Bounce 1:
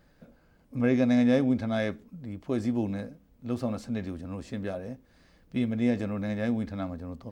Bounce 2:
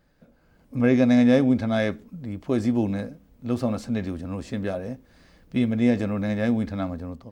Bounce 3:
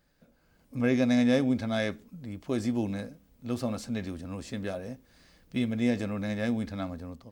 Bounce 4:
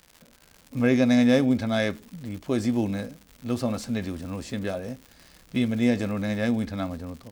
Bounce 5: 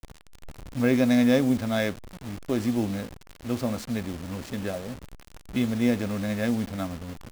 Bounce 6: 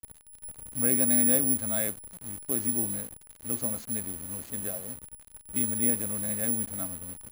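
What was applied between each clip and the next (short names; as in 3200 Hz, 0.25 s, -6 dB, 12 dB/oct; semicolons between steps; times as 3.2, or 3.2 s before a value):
AGC gain up to 8.5 dB; gain -3 dB
high shelf 2600 Hz +8.5 dB; gain -6.5 dB
crackle 180/s -41 dBFS; gain +4.5 dB
level-crossing sampler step -34.5 dBFS; gain -1 dB
careless resampling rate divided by 4×, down filtered, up zero stuff; gain -9 dB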